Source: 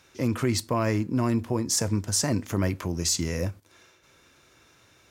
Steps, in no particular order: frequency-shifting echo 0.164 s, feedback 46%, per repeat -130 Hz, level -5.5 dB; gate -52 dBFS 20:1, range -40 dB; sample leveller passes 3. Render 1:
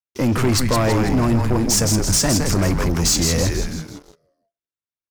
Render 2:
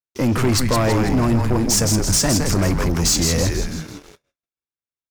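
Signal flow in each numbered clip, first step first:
gate > frequency-shifting echo > sample leveller; frequency-shifting echo > gate > sample leveller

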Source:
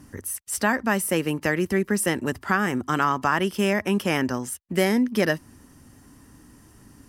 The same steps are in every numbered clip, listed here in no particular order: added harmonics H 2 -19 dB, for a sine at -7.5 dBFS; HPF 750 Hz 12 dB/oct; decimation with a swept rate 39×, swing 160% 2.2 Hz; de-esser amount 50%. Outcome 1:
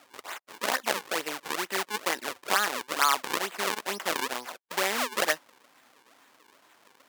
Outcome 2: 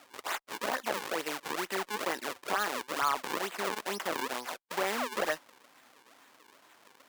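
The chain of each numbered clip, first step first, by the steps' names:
de-esser > decimation with a swept rate > added harmonics > HPF; decimation with a swept rate > HPF > de-esser > added harmonics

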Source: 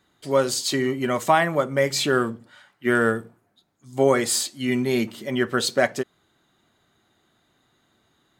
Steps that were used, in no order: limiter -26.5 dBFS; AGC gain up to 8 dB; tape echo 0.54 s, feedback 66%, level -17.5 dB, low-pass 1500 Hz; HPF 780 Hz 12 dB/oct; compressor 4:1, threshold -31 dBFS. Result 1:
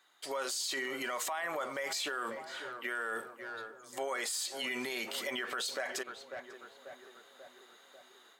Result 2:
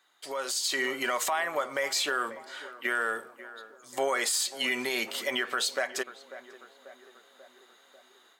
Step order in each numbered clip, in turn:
AGC > HPF > tape echo > limiter > compressor; HPF > compressor > tape echo > limiter > AGC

